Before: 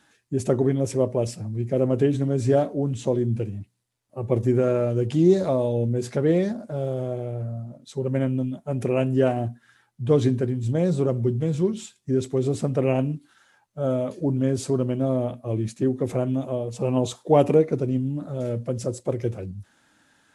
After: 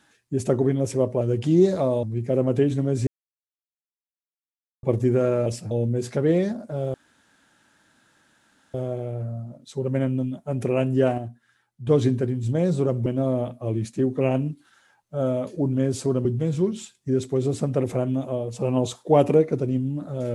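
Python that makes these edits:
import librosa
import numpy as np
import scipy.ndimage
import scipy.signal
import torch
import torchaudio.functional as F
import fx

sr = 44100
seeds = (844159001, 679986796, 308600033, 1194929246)

y = fx.edit(x, sr, fx.swap(start_s=1.21, length_s=0.25, other_s=4.89, other_length_s=0.82),
    fx.silence(start_s=2.5, length_s=1.76),
    fx.insert_room_tone(at_s=6.94, length_s=1.8),
    fx.clip_gain(start_s=9.38, length_s=0.69, db=-6.5),
    fx.swap(start_s=11.26, length_s=1.59, other_s=14.89, other_length_s=1.15), tone=tone)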